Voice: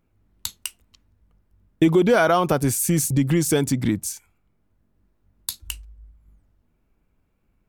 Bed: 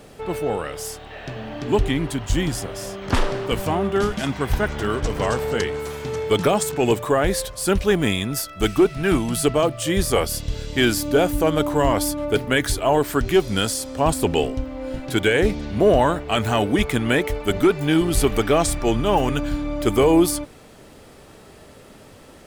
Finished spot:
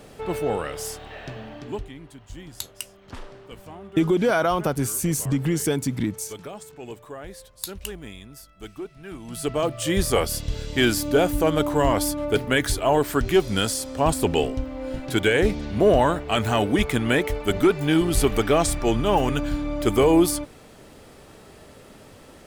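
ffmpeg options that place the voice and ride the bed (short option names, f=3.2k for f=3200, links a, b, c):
-filter_complex "[0:a]adelay=2150,volume=-3.5dB[a];[1:a]volume=16.5dB,afade=t=out:st=1.06:d=0.83:silence=0.125893,afade=t=in:st=9.18:d=0.68:silence=0.133352[b];[a][b]amix=inputs=2:normalize=0"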